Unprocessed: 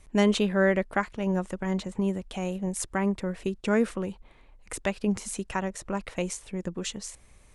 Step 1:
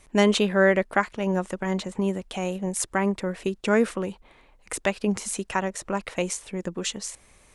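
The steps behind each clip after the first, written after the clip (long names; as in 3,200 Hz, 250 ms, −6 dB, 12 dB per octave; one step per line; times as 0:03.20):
low-shelf EQ 160 Hz −10 dB
level +5 dB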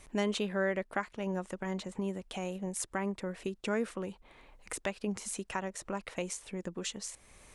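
downward compressor 1.5 to 1, threshold −50 dBFS, peak gain reduction 12.5 dB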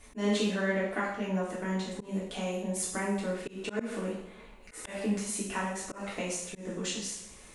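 coupled-rooms reverb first 0.67 s, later 2 s, DRR −6.5 dB
volume swells 157 ms
level −3 dB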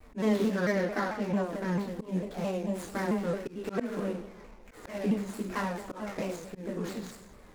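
running median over 15 samples
pitch modulation by a square or saw wave saw down 4.5 Hz, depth 160 cents
level +2 dB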